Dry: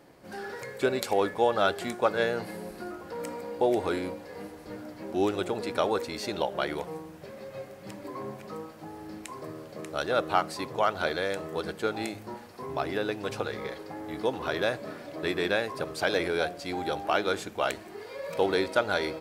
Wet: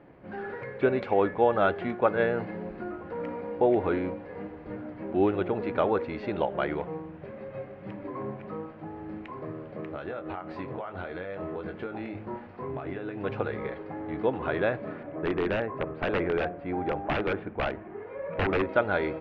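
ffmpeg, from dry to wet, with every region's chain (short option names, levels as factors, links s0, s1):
-filter_complex "[0:a]asettb=1/sr,asplit=3[s0][s1][s2];[s0]atrim=end=9.894[s3];[s1]atrim=start=9.89:end=13.17,asetpts=PTS-STARTPTS,afade=t=in:d=0.004:c=qsin,afade=t=out:st=3.276:d=0.004:c=qsin,acompressor=threshold=0.0224:ratio=20:attack=3.2:release=140:knee=1:detection=peak,asplit=2[s4][s5];[s5]adelay=22,volume=0.447[s6];[s4][s6]amix=inputs=2:normalize=0,atrim=end_sample=144648[s7];[s2]atrim=start=13.166[s8];[s3][s7]acrossfade=d=0.004:c1=hsin:c2=qsin[s9];[s9][s8]acrossfade=d=0.004:c1=qsin:c2=hsin,asettb=1/sr,asplit=3[s10][s11][s12];[s10]atrim=end=15.034[s13];[s11]atrim=start=15.03:end=18.69,asetpts=PTS-STARTPTS,afade=t=in:d=0.004:c=qsin,afade=t=out:st=3.656:d=0.004:c=qsin,lowpass=1900,aeval=exprs='(mod(10*val(0)+1,2)-1)/10':c=same[s14];[s12]atrim=start=18.686[s15];[s13][s14]acrossfade=d=0.004:c1=hsin:c2=qsin[s16];[s16][s15]acrossfade=d=0.004:c1=qsin:c2=hsin,lowpass=f=2600:w=0.5412,lowpass=f=2600:w=1.3066,lowshelf=f=340:g=5.5"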